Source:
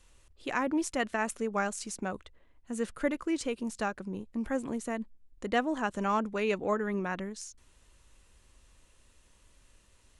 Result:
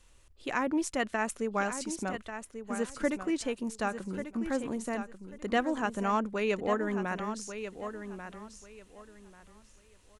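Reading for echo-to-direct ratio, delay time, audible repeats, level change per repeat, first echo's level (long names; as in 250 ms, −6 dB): −9.5 dB, 1,140 ms, 2, −13.0 dB, −9.5 dB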